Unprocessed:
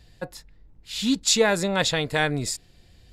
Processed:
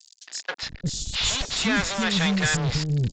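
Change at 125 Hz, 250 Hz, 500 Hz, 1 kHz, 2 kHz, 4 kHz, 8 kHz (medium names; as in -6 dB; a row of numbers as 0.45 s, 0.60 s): +7.0 dB, +1.0 dB, -8.5 dB, -2.0 dB, +1.5 dB, +1.5 dB, -1.5 dB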